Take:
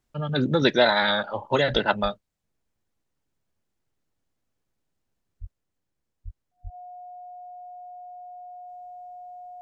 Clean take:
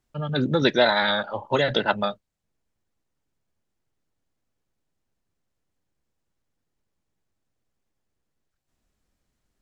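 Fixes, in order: notch 720 Hz, Q 30; de-plosive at 1.72/2.02/5.4/6.24/6.63; gain correction +3 dB, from 5.51

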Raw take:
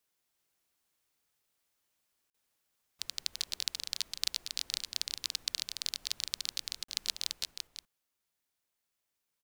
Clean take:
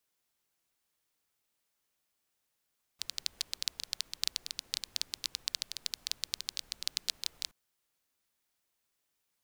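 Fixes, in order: interpolate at 2.3/6.84, 44 ms; inverse comb 0.339 s -4.5 dB; gain correction +5 dB, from 7.33

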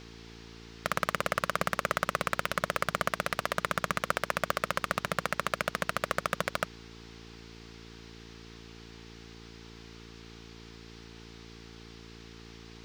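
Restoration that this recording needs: clip repair -10.5 dBFS; de-hum 56.7 Hz, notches 8; noise print and reduce 28 dB

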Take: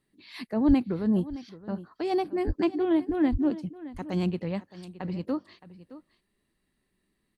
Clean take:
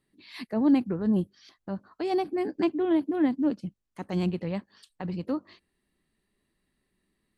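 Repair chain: 0.67–0.79 HPF 140 Hz 24 dB/oct; 2.46–2.58 HPF 140 Hz 24 dB/oct; 3.31–3.43 HPF 140 Hz 24 dB/oct; inverse comb 0.618 s -16.5 dB

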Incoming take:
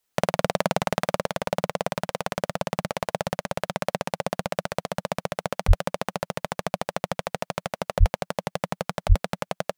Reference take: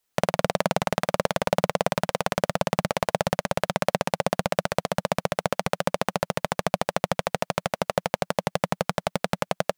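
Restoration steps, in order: de-plosive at 5.67/7.99/9.08; gain 0 dB, from 1.18 s +3.5 dB

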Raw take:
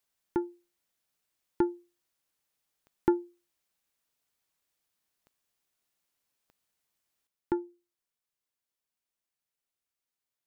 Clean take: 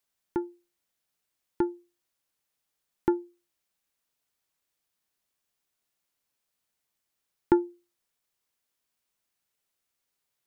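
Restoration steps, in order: de-click; gain 0 dB, from 7.27 s +8.5 dB

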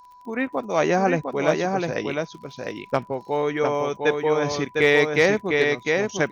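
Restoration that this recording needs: clip repair -7.5 dBFS; de-click; notch 990 Hz, Q 30; inverse comb 0.704 s -4 dB

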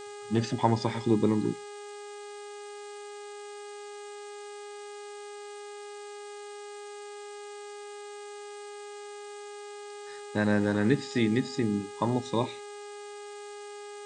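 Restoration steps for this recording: de-hum 411.4 Hz, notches 12; noise print and reduce 30 dB

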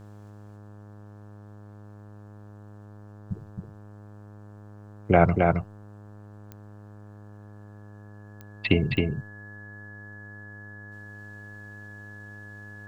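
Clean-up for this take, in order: de-click; de-hum 103.5 Hz, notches 17; notch 1700 Hz, Q 30; inverse comb 0.268 s -3.5 dB

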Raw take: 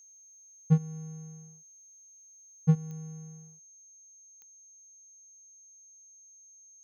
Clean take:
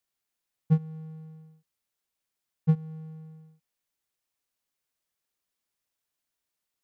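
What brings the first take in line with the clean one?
de-click; notch 6400 Hz, Q 30; gain 0 dB, from 3.59 s +5 dB

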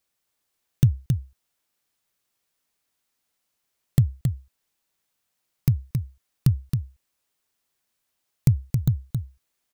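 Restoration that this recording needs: inverse comb 0.271 s -6 dB

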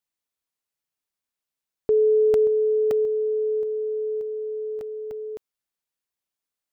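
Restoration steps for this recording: interpolate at 1.11/1.75/2.34/2.91/4.81/5.11/6.16, 1.6 ms

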